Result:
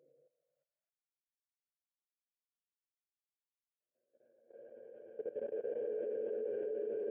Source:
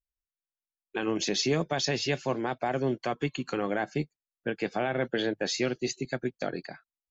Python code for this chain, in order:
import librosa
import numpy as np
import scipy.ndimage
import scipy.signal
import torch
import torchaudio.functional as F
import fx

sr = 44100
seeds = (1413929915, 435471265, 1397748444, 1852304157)

y = fx.wah_lfo(x, sr, hz=1.7, low_hz=380.0, high_hz=3300.0, q=16.0)
y = fx.paulstretch(y, sr, seeds[0], factor=17.0, window_s=0.25, from_s=4.12)
y = fx.level_steps(y, sr, step_db=16)
y = y * librosa.db_to_amplitude(10.0)